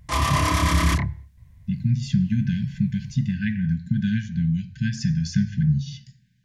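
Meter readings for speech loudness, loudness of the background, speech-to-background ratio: −24.5 LKFS, −21.5 LKFS, −3.0 dB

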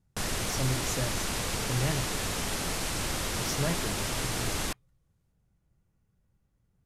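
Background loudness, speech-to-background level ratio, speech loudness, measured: −31.0 LKFS, −4.5 dB, −35.5 LKFS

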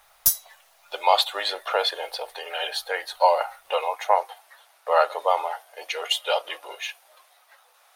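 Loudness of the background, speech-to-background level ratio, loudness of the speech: −22.5 LKFS, −2.5 dB, −25.0 LKFS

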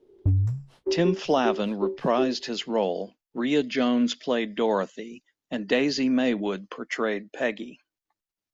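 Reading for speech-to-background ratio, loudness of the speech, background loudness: 3.0 dB, −26.5 LKFS, −29.5 LKFS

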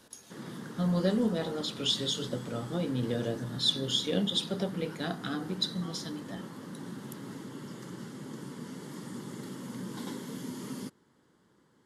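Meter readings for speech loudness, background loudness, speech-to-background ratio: −31.5 LKFS, −42.5 LKFS, 11.0 dB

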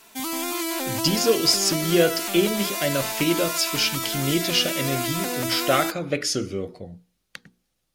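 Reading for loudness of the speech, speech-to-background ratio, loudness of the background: −23.5 LKFS, 3.0 dB, −26.5 LKFS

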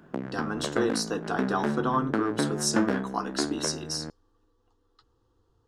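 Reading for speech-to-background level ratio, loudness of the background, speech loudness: 1.0 dB, −31.5 LKFS, −30.5 LKFS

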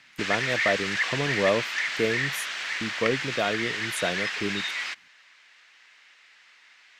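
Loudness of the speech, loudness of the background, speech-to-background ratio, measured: −30.0 LKFS, −27.5 LKFS, −2.5 dB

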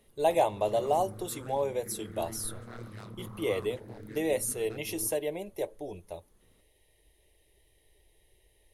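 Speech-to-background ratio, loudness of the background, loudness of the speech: 14.0 dB, −46.0 LKFS, −32.0 LKFS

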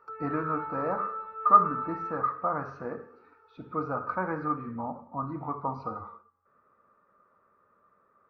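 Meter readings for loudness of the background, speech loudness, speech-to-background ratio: −36.5 LKFS, −30.0 LKFS, 6.5 dB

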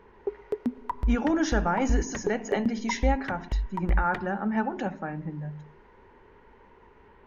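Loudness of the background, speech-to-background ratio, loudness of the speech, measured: −33.0 LKFS, 3.5 dB, −29.5 LKFS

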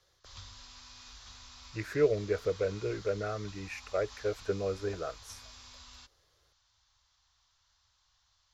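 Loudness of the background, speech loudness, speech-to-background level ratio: −50.0 LKFS, −34.0 LKFS, 16.0 dB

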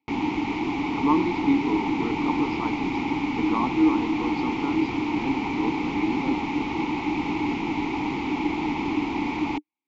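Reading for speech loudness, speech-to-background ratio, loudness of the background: −27.5 LKFS, −0.5 dB, −27.0 LKFS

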